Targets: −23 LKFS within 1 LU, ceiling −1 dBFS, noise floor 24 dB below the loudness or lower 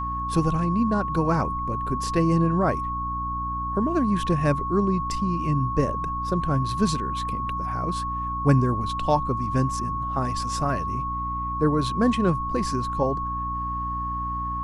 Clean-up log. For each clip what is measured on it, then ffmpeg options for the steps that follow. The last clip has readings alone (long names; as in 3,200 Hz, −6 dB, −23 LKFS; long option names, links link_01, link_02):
mains hum 60 Hz; hum harmonics up to 300 Hz; level of the hum −31 dBFS; interfering tone 1,100 Hz; level of the tone −27 dBFS; integrated loudness −25.0 LKFS; sample peak −6.5 dBFS; target loudness −23.0 LKFS
→ -af "bandreject=frequency=60:width_type=h:width=6,bandreject=frequency=120:width_type=h:width=6,bandreject=frequency=180:width_type=h:width=6,bandreject=frequency=240:width_type=h:width=6,bandreject=frequency=300:width_type=h:width=6"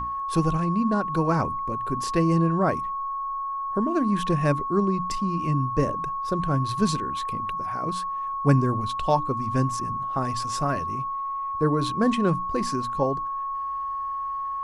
mains hum none found; interfering tone 1,100 Hz; level of the tone −27 dBFS
→ -af "bandreject=frequency=1100:width=30"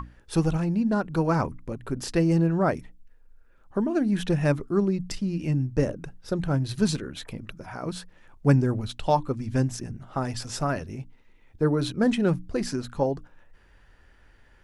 interfering tone none found; integrated loudness −26.5 LKFS; sample peak −7.0 dBFS; target loudness −23.0 LKFS
→ -af "volume=3.5dB"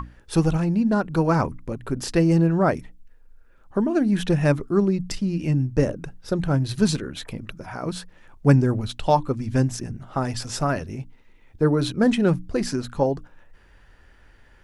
integrated loudness −23.0 LKFS; sample peak −3.5 dBFS; background noise floor −53 dBFS